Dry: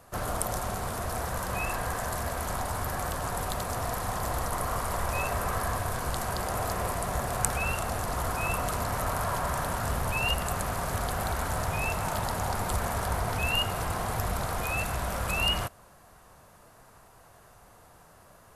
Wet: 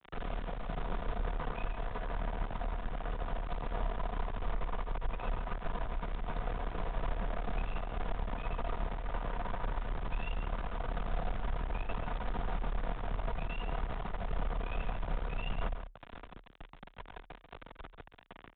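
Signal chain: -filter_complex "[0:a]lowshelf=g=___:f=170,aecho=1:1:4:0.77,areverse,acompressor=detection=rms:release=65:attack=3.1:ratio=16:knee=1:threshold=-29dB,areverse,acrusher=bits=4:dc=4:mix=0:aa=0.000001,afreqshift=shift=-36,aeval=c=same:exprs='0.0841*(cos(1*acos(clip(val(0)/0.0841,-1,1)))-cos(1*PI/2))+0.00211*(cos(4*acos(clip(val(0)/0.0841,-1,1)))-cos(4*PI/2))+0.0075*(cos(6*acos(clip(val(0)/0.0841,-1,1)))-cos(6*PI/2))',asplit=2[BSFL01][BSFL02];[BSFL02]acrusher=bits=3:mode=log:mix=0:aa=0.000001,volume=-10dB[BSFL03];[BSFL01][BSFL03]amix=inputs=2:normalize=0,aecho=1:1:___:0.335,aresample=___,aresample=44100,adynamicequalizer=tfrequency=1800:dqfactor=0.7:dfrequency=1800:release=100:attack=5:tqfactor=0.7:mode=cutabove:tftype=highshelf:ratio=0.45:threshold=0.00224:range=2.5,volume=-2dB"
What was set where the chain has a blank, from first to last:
12, 138, 8000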